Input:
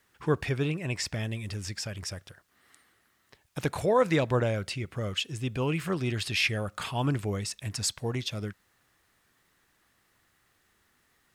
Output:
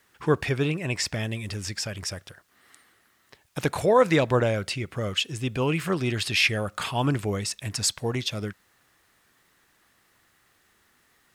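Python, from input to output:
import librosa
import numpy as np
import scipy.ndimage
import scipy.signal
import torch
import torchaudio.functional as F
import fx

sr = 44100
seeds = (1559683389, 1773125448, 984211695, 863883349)

y = fx.low_shelf(x, sr, hz=140.0, db=-5.0)
y = y * 10.0 ** (5.0 / 20.0)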